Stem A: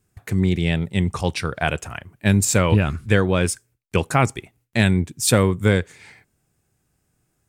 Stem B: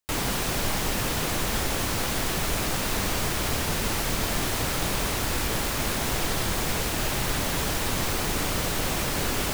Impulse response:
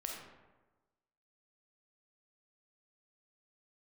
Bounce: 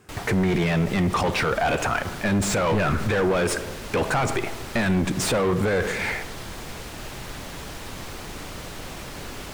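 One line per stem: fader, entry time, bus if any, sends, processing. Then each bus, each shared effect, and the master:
-2.5 dB, 0.00 s, send -11.5 dB, overdrive pedal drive 33 dB, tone 1.1 kHz, clips at -2.5 dBFS
-8.5 dB, 0.00 s, no send, treble shelf 10 kHz -9 dB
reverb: on, RT60 1.2 s, pre-delay 5 ms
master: peak limiter -15.5 dBFS, peak gain reduction 10.5 dB

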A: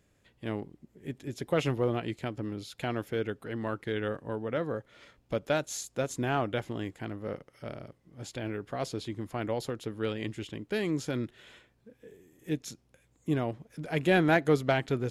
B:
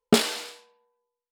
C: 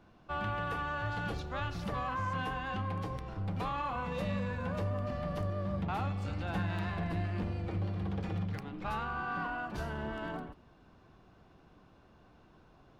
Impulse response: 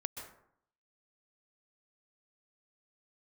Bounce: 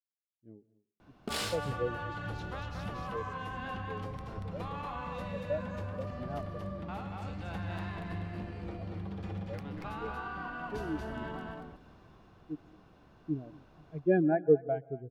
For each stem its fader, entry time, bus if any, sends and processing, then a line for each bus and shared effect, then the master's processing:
-0.5 dB, 0.00 s, send -15.5 dB, echo send -19.5 dB, spectral contrast expander 2.5:1
-7.0 dB, 1.15 s, send -8.5 dB, no echo send, tremolo of two beating tones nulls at 3.4 Hz
+0.5 dB, 1.00 s, send -6.5 dB, echo send -4.5 dB, compression, threshold -37 dBFS, peak gain reduction 7.5 dB; auto duck -6 dB, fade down 0.60 s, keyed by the first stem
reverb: on, RT60 0.65 s, pre-delay 117 ms
echo: delay 234 ms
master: none

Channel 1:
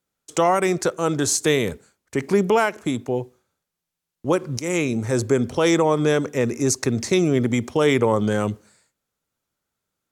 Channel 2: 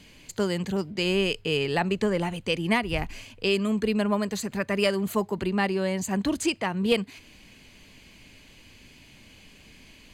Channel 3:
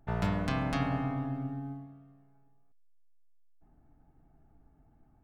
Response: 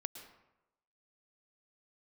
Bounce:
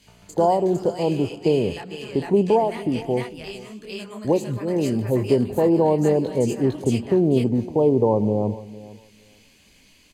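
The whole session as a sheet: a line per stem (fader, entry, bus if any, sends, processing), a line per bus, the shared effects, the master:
-1.5 dB, 0.00 s, send -8 dB, echo send -17 dB, steep low-pass 950 Hz 72 dB/octave
-4.0 dB, 0.00 s, send -10.5 dB, echo send -4.5 dB, tone controls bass -2 dB, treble +7 dB; detune thickener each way 39 cents; auto duck -11 dB, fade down 1.20 s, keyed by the first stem
-14.0 dB, 0.00 s, no send, no echo send, compression, threshold -35 dBFS, peak gain reduction 10.5 dB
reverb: on, RT60 0.95 s, pre-delay 103 ms
echo: feedback delay 455 ms, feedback 17%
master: none

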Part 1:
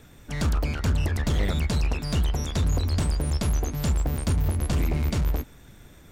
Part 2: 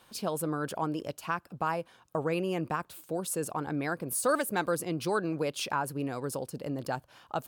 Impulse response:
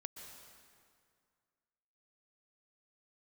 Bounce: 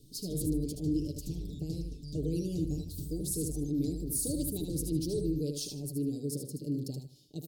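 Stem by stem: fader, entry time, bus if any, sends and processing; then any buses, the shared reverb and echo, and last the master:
-7.5 dB, 0.00 s, no send, no echo send, treble shelf 6 kHz -8.5 dB; auto duck -7 dB, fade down 0.85 s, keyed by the second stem
-1.5 dB, 0.00 s, no send, echo send -6 dB, none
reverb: none
echo: feedback delay 76 ms, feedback 25%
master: elliptic band-stop 380–4400 Hz, stop band 80 dB; comb 6.8 ms

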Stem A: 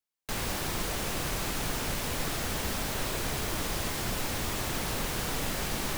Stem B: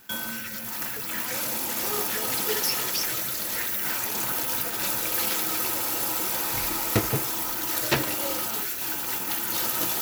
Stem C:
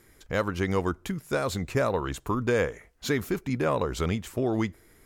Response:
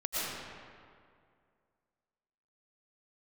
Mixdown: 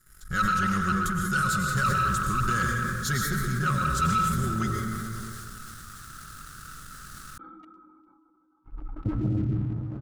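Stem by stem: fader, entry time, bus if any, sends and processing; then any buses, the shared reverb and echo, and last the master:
-14.0 dB, 1.40 s, bus A, no send, none
+2.5 dB, 2.10 s, bus A, send -4.5 dB, expander on every frequency bin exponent 3; cascade formant filter u; tilt EQ -3 dB/octave
-12.0 dB, 0.00 s, no bus, send -4 dB, bass shelf 110 Hz +10.5 dB; comb 5.4 ms, depth 64%
bus A: 0.0 dB, treble shelf 3.9 kHz -7 dB; compression 2:1, threshold -51 dBFS, peak gain reduction 16.5 dB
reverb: on, RT60 2.2 s, pre-delay 75 ms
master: FFT filter 150 Hz 0 dB, 330 Hz -13 dB, 910 Hz -25 dB, 1.3 kHz +14 dB, 2.5 kHz -16 dB, 3.6 kHz -1 dB, 9.4 kHz +9 dB, 15 kHz +2 dB; waveshaping leveller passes 2; decay stretcher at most 22 dB/s

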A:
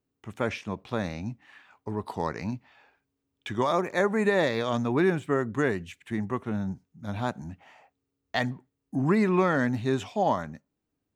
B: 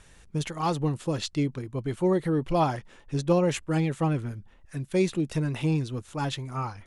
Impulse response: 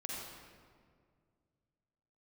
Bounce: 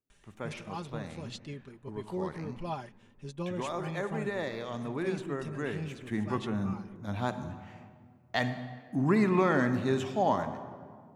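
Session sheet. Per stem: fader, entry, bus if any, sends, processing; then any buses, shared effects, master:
5.62 s -13 dB -> 6.07 s -4.5 dB, 0.00 s, send -6 dB, none
-6.5 dB, 0.10 s, no send, peaking EQ 2.9 kHz +4 dB; comb 5 ms, depth 57%; auto duck -8 dB, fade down 0.20 s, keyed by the first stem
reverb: on, RT60 2.0 s, pre-delay 40 ms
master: none

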